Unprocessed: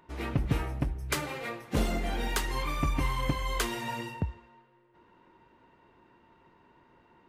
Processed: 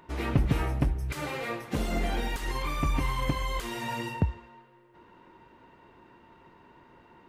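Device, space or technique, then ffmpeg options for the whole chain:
de-esser from a sidechain: -filter_complex "[0:a]asplit=2[s0][s1];[s1]highpass=4300,apad=whole_len=321421[s2];[s0][s2]sidechaincompress=threshold=0.00316:ratio=4:attack=1.4:release=28,volume=1.88"

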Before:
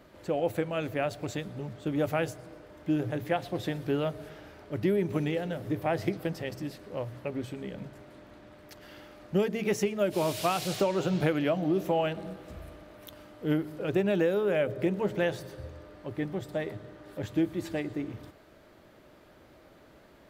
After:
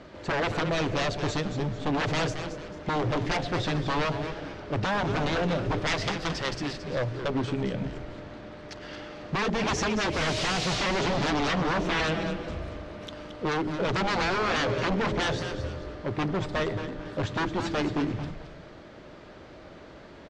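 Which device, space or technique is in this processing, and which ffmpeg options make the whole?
synthesiser wavefolder: -filter_complex "[0:a]aeval=exprs='0.0299*(abs(mod(val(0)/0.0299+3,4)-2)-1)':c=same,lowpass=f=6400:w=0.5412,lowpass=f=6400:w=1.3066,asettb=1/sr,asplit=3[s0][s1][s2];[s0]atrim=end=5.874[s3];[s1]atrim=start=5.87:end=6.73,asetpts=PTS-STARTPTS,afade=t=in:d=0.004:c=qsin,afade=t=out:st=0.856:d=0.004:c=qsin,tiltshelf=f=1200:g=-4.5[s4];[s2]atrim=start=6.726[s5];[s3][s4]acrossfade=d=0.004:c1=hsin:c2=qsin[s6];[s6][s5]acrossfade=d=0.004:c1=qsin:c2=hsin,asplit=5[s7][s8][s9][s10][s11];[s8]adelay=222,afreqshift=-140,volume=0.355[s12];[s9]adelay=444,afreqshift=-280,volume=0.124[s13];[s10]adelay=666,afreqshift=-420,volume=0.0437[s14];[s11]adelay=888,afreqshift=-560,volume=0.0151[s15];[s7][s12][s13][s14][s15]amix=inputs=5:normalize=0,volume=2.66"

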